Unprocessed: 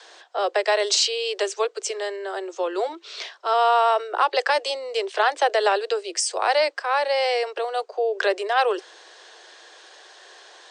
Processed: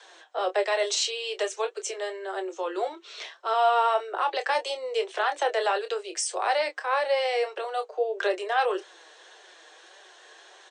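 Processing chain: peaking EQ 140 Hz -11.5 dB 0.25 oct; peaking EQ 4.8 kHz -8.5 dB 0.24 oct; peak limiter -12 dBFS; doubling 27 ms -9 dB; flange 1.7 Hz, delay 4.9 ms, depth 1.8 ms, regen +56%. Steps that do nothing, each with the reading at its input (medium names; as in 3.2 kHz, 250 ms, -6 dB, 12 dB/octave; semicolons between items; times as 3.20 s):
peaking EQ 140 Hz: input has nothing below 290 Hz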